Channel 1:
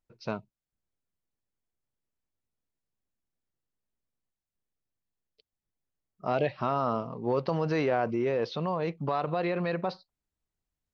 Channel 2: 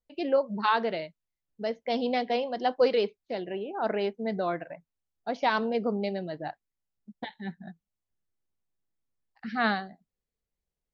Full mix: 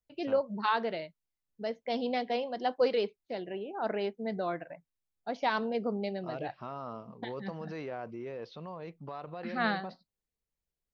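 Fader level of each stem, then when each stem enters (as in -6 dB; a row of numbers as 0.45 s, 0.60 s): -12.5 dB, -4.0 dB; 0.00 s, 0.00 s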